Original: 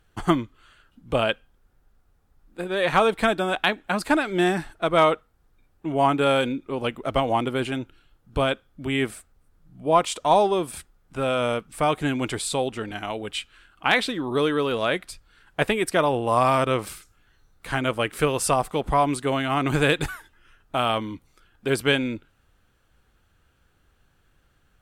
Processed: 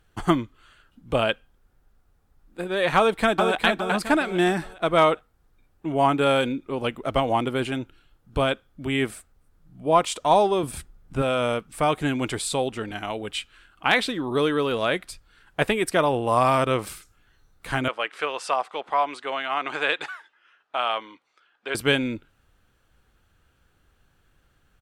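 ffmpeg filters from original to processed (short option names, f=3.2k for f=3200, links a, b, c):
-filter_complex "[0:a]asplit=2[a][b];[b]afade=t=in:st=2.97:d=0.01,afade=t=out:st=3.62:d=0.01,aecho=0:1:410|820|1230|1640:0.595662|0.208482|0.0729686|0.025539[c];[a][c]amix=inputs=2:normalize=0,asettb=1/sr,asplit=3[d][e][f];[d]atrim=end=10.634[g];[e]atrim=start=10.63:end=11.22,asetpts=PTS-STARTPTS,afade=t=in:d=0.004:c=qsin,afade=t=out:st=0.586:d=0.004:c=qsin,lowshelf=f=300:g=9.5[h];[f]atrim=start=11.216[i];[g][h]acrossfade=d=0.004:c1=hsin:c2=qsin[j];[j][i]acrossfade=d=0.004:c1=qsin:c2=hsin,asettb=1/sr,asplit=3[k][l][m];[k]atrim=end=17.884[n];[l]atrim=start=17.88:end=21.75,asetpts=PTS-STARTPTS,afade=t=in:d=0.004:c=qsin,afade=t=out:st=3.866:d=0.004:c=qsin,highpass=670,lowpass=4.1k[o];[m]atrim=start=21.746[p];[n][o]acrossfade=d=0.004:c1=hsin:c2=qsin[q];[q][p]acrossfade=d=0.004:c1=qsin:c2=hsin"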